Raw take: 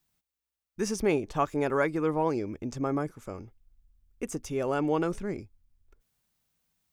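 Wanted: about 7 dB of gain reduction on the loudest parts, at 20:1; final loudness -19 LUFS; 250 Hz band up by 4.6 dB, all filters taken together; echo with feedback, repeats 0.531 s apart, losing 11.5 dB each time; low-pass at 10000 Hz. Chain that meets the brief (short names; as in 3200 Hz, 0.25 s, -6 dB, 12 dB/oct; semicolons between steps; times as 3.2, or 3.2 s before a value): LPF 10000 Hz; bell 250 Hz +6 dB; compressor 20:1, threshold -26 dBFS; feedback echo 0.531 s, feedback 27%, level -11.5 dB; gain +14 dB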